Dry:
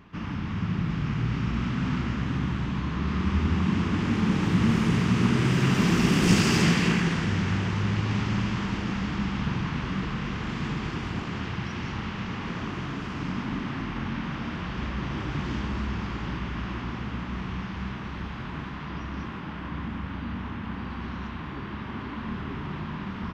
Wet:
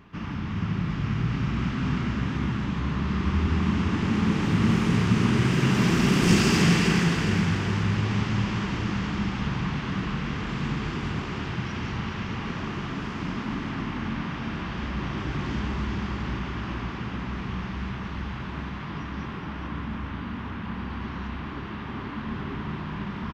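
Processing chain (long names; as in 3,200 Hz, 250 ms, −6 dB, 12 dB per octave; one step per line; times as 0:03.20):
repeating echo 416 ms, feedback 36%, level −7 dB
on a send at −15.5 dB: convolution reverb RT60 0.90 s, pre-delay 3 ms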